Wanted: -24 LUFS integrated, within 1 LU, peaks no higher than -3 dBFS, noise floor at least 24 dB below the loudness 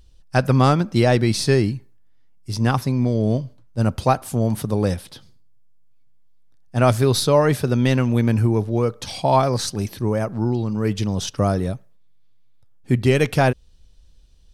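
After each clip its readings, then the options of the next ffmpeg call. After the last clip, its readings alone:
loudness -20.0 LUFS; peak -4.5 dBFS; loudness target -24.0 LUFS
-> -af "volume=-4dB"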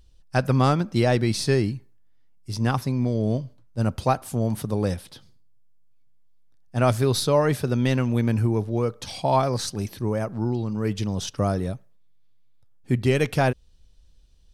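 loudness -24.0 LUFS; peak -8.5 dBFS; noise floor -53 dBFS

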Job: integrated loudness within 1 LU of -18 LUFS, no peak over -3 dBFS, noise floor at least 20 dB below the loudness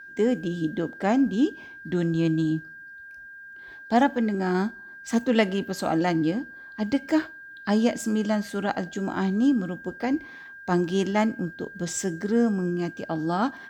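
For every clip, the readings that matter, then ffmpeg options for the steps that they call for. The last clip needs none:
steady tone 1600 Hz; tone level -41 dBFS; loudness -26.0 LUFS; peak -7.5 dBFS; loudness target -18.0 LUFS
-> -af "bandreject=f=1.6k:w=30"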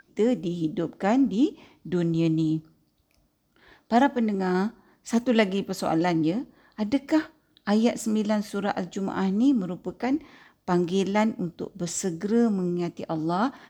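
steady tone none; loudness -26.0 LUFS; peak -7.5 dBFS; loudness target -18.0 LUFS
-> -af "volume=8dB,alimiter=limit=-3dB:level=0:latency=1"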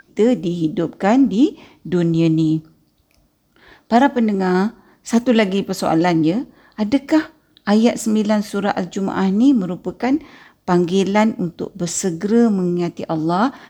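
loudness -18.0 LUFS; peak -3.0 dBFS; noise floor -60 dBFS

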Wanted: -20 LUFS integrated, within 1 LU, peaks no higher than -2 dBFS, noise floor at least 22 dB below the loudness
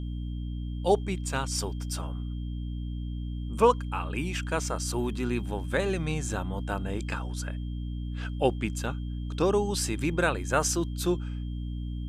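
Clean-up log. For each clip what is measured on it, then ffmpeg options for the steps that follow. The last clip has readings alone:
hum 60 Hz; harmonics up to 300 Hz; hum level -31 dBFS; steady tone 3200 Hz; tone level -56 dBFS; loudness -30.0 LUFS; peak -8.5 dBFS; loudness target -20.0 LUFS
-> -af "bandreject=f=60:t=h:w=6,bandreject=f=120:t=h:w=6,bandreject=f=180:t=h:w=6,bandreject=f=240:t=h:w=6,bandreject=f=300:t=h:w=6"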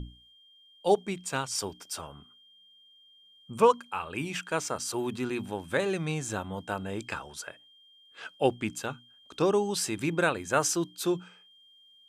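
hum none; steady tone 3200 Hz; tone level -56 dBFS
-> -af "bandreject=f=3.2k:w=30"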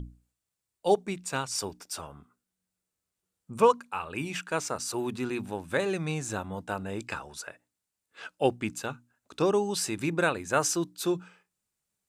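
steady tone none; loudness -30.0 LUFS; peak -9.5 dBFS; loudness target -20.0 LUFS
-> -af "volume=10dB,alimiter=limit=-2dB:level=0:latency=1"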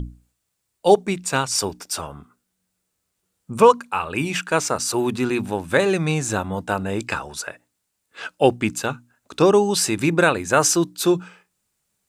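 loudness -20.5 LUFS; peak -2.0 dBFS; noise floor -76 dBFS

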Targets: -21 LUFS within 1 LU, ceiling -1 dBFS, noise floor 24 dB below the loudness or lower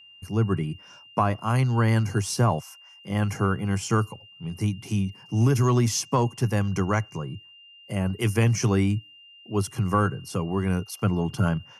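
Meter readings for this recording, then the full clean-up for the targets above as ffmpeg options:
steady tone 2800 Hz; tone level -48 dBFS; loudness -25.5 LUFS; peak -8.5 dBFS; loudness target -21.0 LUFS
-> -af "bandreject=f=2.8k:w=30"
-af "volume=4.5dB"

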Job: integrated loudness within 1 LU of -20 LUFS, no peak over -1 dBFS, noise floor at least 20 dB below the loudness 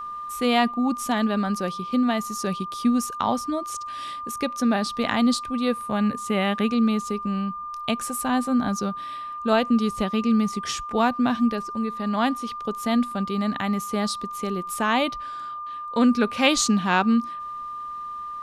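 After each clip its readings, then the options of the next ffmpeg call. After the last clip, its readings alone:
steady tone 1200 Hz; tone level -31 dBFS; loudness -24.5 LUFS; peak -6.0 dBFS; loudness target -20.0 LUFS
-> -af "bandreject=f=1.2k:w=30"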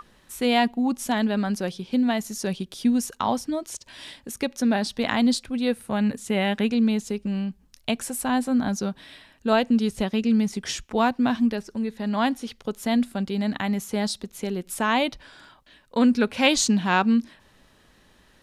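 steady tone none; loudness -24.5 LUFS; peak -6.5 dBFS; loudness target -20.0 LUFS
-> -af "volume=4.5dB"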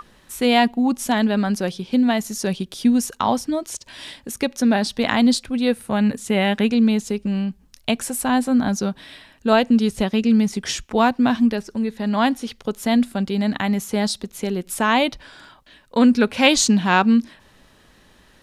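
loudness -20.0 LUFS; peak -2.0 dBFS; noise floor -54 dBFS

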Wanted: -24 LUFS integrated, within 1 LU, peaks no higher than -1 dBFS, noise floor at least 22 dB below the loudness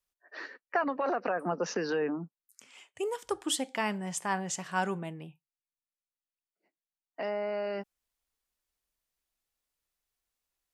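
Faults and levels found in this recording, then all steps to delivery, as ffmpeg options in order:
loudness -33.0 LUFS; peak -16.0 dBFS; loudness target -24.0 LUFS
-> -af "volume=9dB"

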